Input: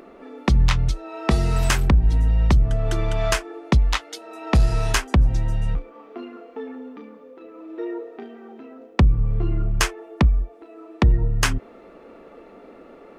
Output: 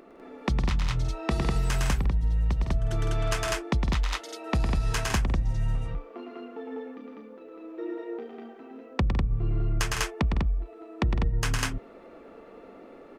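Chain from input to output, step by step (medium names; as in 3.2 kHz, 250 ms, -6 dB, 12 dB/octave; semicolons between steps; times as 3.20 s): loudspeakers at several distances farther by 37 m -4 dB, 54 m -9 dB, 68 m -1 dB; compression, threshold -15 dBFS, peak gain reduction 9.5 dB; trim -6.5 dB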